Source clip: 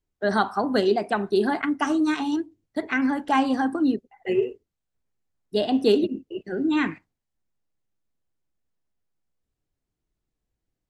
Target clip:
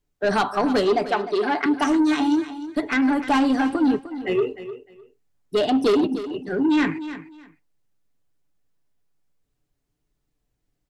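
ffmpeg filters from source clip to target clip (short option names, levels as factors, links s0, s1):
-filter_complex "[0:a]aecho=1:1:6.9:0.36,asoftclip=type=tanh:threshold=0.106,asettb=1/sr,asplit=3[s0][s1][s2];[s0]atrim=end=1.084[s3];[s1]atrim=start=1.08:end=1.66,asetpts=PTS-STARTPTS,afade=t=in:d=0.004:c=qsin,afade=t=out:st=0.576:d=0.004:c=qsin,highpass=350,lowpass=5900[s4];[s2]atrim=start=1.656[s5];[s3][s4]acrossfade=d=0.004:c1=hsin:c2=qsin[s6];[s6][s5]acrossfade=d=0.004:c1=qsin:c2=hsin,asplit=2[s7][s8];[s8]aecho=0:1:304|608:0.224|0.0448[s9];[s7][s9]amix=inputs=2:normalize=0,volume=1.78"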